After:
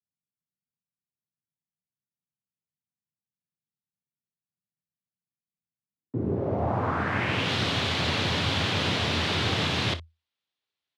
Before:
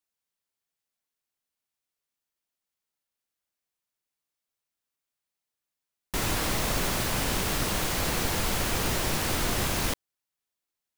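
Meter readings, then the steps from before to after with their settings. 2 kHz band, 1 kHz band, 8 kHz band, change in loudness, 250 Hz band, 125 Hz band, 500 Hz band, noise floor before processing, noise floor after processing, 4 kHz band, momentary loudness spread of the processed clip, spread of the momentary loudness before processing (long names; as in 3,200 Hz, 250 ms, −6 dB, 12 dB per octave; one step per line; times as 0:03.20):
+3.0 dB, +2.0 dB, −12.0 dB, +1.5 dB, +3.0 dB, +4.0 dB, +2.5 dB, below −85 dBFS, below −85 dBFS, +4.0 dB, 4 LU, 2 LU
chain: ambience of single reflections 27 ms −13.5 dB, 59 ms −16 dB
frequency shifter +81 Hz
low-pass filter sweep 170 Hz → 3,600 Hz, 0:05.84–0:07.52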